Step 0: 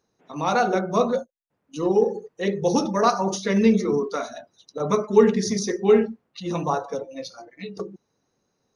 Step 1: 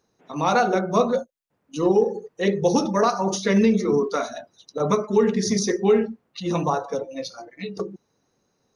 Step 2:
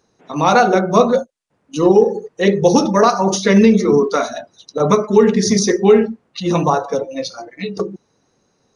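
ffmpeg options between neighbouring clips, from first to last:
-af "alimiter=limit=-12dB:level=0:latency=1:release=347,volume=3dB"
-af "aresample=22050,aresample=44100,volume=7.5dB"

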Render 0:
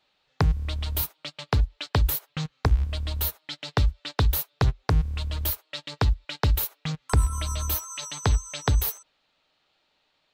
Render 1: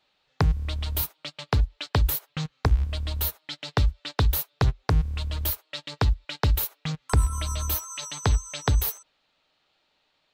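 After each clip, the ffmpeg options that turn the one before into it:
-af anull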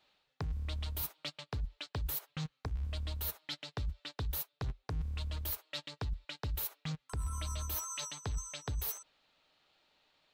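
-af "areverse,acompressor=threshold=-33dB:ratio=5,areverse,asoftclip=type=tanh:threshold=-26dB,volume=-1.5dB"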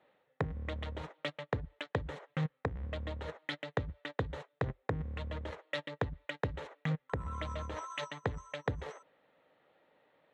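-af "adynamicsmooth=sensitivity=3.5:basefreq=1.3k,highpass=130,equalizer=f=510:t=q:w=4:g=9,equalizer=f=1.9k:t=q:w=4:g=9,equalizer=f=3.4k:t=q:w=4:g=3,equalizer=f=4.8k:t=q:w=4:g=-6,equalizer=f=7.1k:t=q:w=4:g=4,lowpass=f=8.9k:w=0.5412,lowpass=f=8.9k:w=1.3066,volume=7.5dB"

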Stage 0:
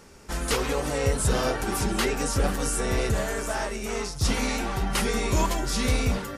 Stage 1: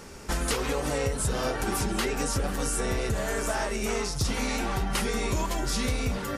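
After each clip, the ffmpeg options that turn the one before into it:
-af "acompressor=threshold=-31dB:ratio=6,volume=6dB"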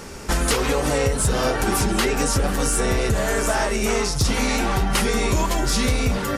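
-af "asoftclip=type=tanh:threshold=-15.5dB,volume=8dB"

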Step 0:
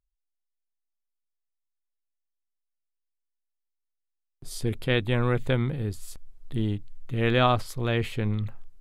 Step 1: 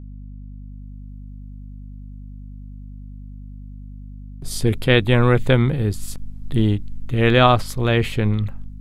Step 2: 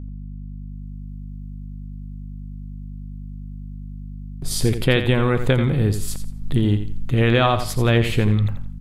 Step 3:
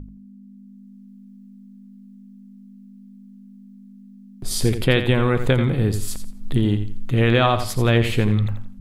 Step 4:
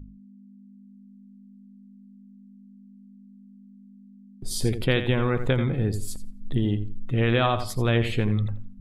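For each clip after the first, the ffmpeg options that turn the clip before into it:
-af "dynaudnorm=f=200:g=7:m=8.5dB,aeval=exprs='val(0)+0.0158*(sin(2*PI*50*n/s)+sin(2*PI*2*50*n/s)/2+sin(2*PI*3*50*n/s)/3+sin(2*PI*4*50*n/s)/4+sin(2*PI*5*50*n/s)/5)':c=same,volume=1.5dB"
-af "acompressor=threshold=-17dB:ratio=6,aecho=1:1:86|172|258:0.316|0.0822|0.0214,volume=3.5dB"
-af "bandreject=f=50:t=h:w=6,bandreject=f=100:t=h:w=6,bandreject=f=150:t=h:w=6"
-af "afftdn=nr=12:nf=-40,volume=-5dB"

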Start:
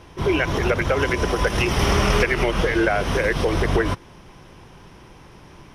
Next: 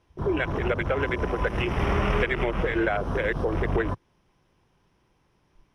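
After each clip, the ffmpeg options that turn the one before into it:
-af "afwtdn=0.0501,volume=-5dB"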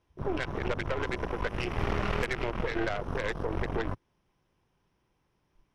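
-af "aeval=exprs='0.299*(cos(1*acos(clip(val(0)/0.299,-1,1)))-cos(1*PI/2))+0.0531*(cos(6*acos(clip(val(0)/0.299,-1,1)))-cos(6*PI/2))':c=same,volume=-7.5dB"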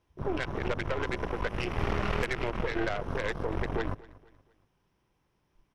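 -af "aecho=1:1:236|472|708:0.0891|0.0357|0.0143"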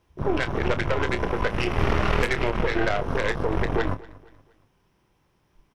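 -filter_complex "[0:a]asplit=2[a][b];[b]adelay=28,volume=-10.5dB[c];[a][c]amix=inputs=2:normalize=0,volume=7dB"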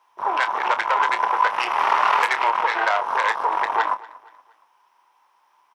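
-af "highpass=f=940:t=q:w=4.9,volume=2.5dB"

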